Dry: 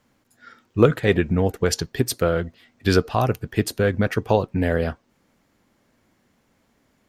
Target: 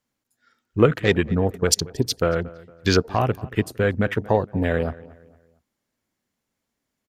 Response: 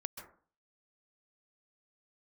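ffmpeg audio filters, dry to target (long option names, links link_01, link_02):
-filter_complex "[0:a]afwtdn=0.0251,highshelf=frequency=3400:gain=10,asplit=2[link_01][link_02];[link_02]adelay=229,lowpass=frequency=2700:poles=1,volume=-20dB,asplit=2[link_03][link_04];[link_04]adelay=229,lowpass=frequency=2700:poles=1,volume=0.38,asplit=2[link_05][link_06];[link_06]adelay=229,lowpass=frequency=2700:poles=1,volume=0.38[link_07];[link_03][link_05][link_07]amix=inputs=3:normalize=0[link_08];[link_01][link_08]amix=inputs=2:normalize=0,volume=-1dB"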